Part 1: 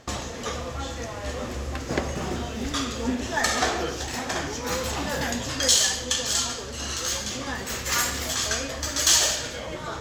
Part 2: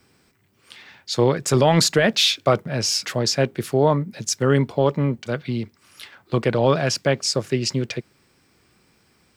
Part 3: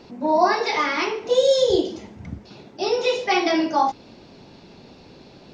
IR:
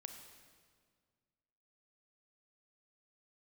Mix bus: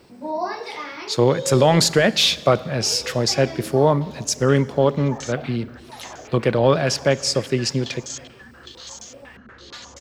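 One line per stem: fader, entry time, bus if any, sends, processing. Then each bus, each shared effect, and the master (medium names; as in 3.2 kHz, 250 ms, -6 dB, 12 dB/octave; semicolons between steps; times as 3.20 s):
-16.0 dB, 1.75 s, no send, echo send -6.5 dB, step-sequenced low-pass 8.4 Hz 230–6500 Hz
-1.5 dB, 0.00 s, send -5 dB, no echo send, none
-8.0 dB, 0.00 s, send -8.5 dB, no echo send, auto duck -12 dB, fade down 1.85 s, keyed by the second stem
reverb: on, RT60 1.9 s, pre-delay 29 ms
echo: delay 810 ms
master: peaking EQ 540 Hz +2 dB 0.31 oct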